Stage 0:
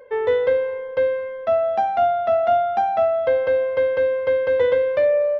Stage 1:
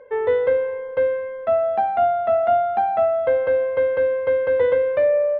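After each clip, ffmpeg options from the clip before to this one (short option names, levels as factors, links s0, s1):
-af "lowpass=2400"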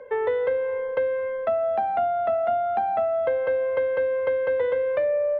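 -filter_complex "[0:a]acrossover=split=170|400[s0][s1][s2];[s0]acompressor=threshold=0.00141:ratio=4[s3];[s1]acompressor=threshold=0.00794:ratio=4[s4];[s2]acompressor=threshold=0.0447:ratio=4[s5];[s3][s4][s5]amix=inputs=3:normalize=0,volume=1.41"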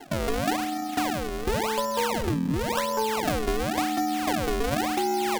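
-af "acrusher=samples=35:mix=1:aa=0.000001:lfo=1:lforange=56:lforate=0.93,aeval=exprs='0.2*(cos(1*acos(clip(val(0)/0.2,-1,1)))-cos(1*PI/2))+0.0126*(cos(8*acos(clip(val(0)/0.2,-1,1)))-cos(8*PI/2))':c=same,aeval=exprs='val(0)*sin(2*PI*220*n/s)':c=same"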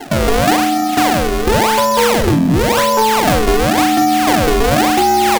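-filter_complex "[0:a]aeval=exprs='0.211*sin(PI/2*1.78*val(0)/0.211)':c=same,asplit=2[s0][s1];[s1]adelay=42,volume=0.398[s2];[s0][s2]amix=inputs=2:normalize=0,volume=2"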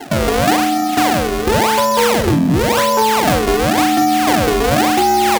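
-af "highpass=50,volume=0.891"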